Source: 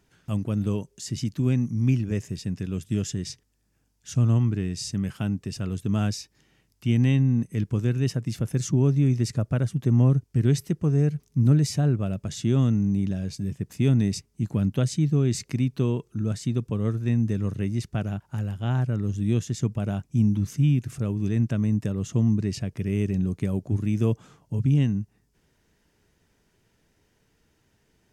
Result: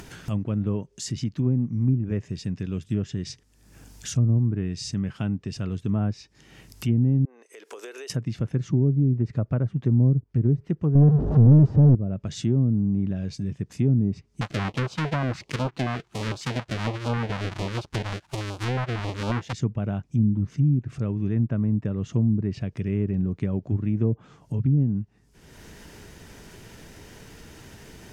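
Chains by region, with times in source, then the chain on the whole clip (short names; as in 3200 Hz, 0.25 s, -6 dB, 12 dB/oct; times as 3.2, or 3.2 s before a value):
7.25–8.1 elliptic high-pass 420 Hz, stop band 70 dB + compressor 8:1, threshold -49 dBFS + mismatched tape noise reduction encoder only
10.95–11.95 zero-crossing step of -24.5 dBFS + bell 2200 Hz -9 dB 0.31 oct + sample leveller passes 2
14.41–19.53 half-waves squared off + low shelf 290 Hz -10.5 dB + stepped notch 11 Hz 370–1900 Hz
whole clip: treble ducked by the level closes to 440 Hz, closed at -16.5 dBFS; upward compressor, threshold -27 dBFS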